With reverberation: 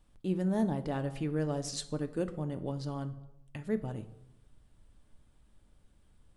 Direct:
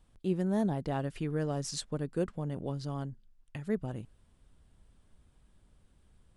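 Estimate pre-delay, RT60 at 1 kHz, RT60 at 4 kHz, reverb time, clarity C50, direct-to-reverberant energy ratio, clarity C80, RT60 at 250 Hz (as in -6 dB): 3 ms, 0.80 s, 0.55 s, 0.85 s, 14.5 dB, 8.5 dB, 17.5 dB, 0.90 s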